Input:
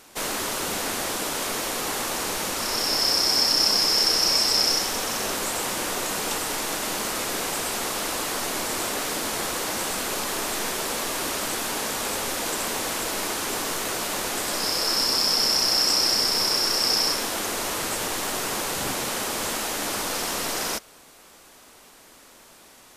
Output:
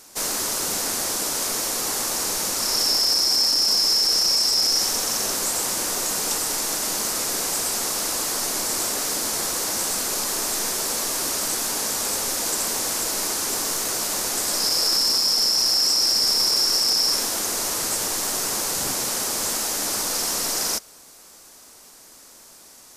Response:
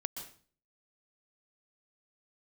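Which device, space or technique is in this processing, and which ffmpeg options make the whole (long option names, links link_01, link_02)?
over-bright horn tweeter: -af "highshelf=frequency=4100:width_type=q:width=1.5:gain=6.5,alimiter=limit=-10dB:level=0:latency=1:release=14,volume=-1.5dB"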